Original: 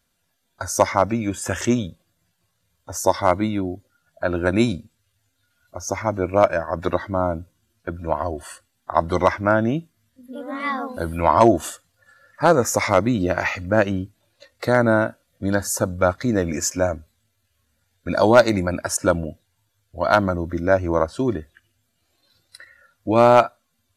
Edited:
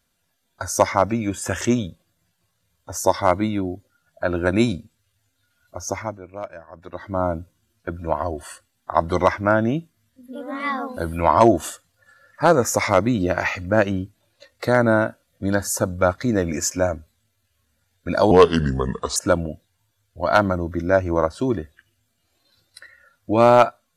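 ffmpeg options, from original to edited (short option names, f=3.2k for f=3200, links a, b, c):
-filter_complex "[0:a]asplit=5[a][b][c][d][e];[a]atrim=end=6.19,asetpts=PTS-STARTPTS,afade=t=out:st=5.79:d=0.4:c=qsin:silence=0.149624[f];[b]atrim=start=6.19:end=6.92,asetpts=PTS-STARTPTS,volume=-16.5dB[g];[c]atrim=start=6.92:end=18.314,asetpts=PTS-STARTPTS,afade=t=in:d=0.4:c=qsin:silence=0.149624[h];[d]atrim=start=18.31:end=18.94,asetpts=PTS-STARTPTS,asetrate=32634,aresample=44100[i];[e]atrim=start=18.936[j];[f][g][h]concat=n=3:v=0:a=1[k];[k][i]acrossfade=d=0.004:c1=hsin:c2=hsin[l];[l][j]acrossfade=d=0.004:c1=hsin:c2=hsin"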